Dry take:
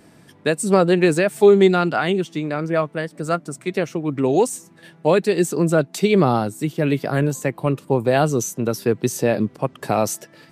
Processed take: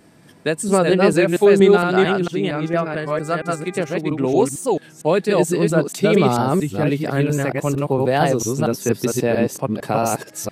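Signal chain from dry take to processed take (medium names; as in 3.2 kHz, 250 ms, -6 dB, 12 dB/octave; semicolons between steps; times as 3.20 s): chunks repeated in reverse 228 ms, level -1.5 dB; 2.54–3.96 s: mains buzz 400 Hz, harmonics 6, -39 dBFS -4 dB/octave; warped record 33 1/3 rpm, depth 100 cents; trim -1 dB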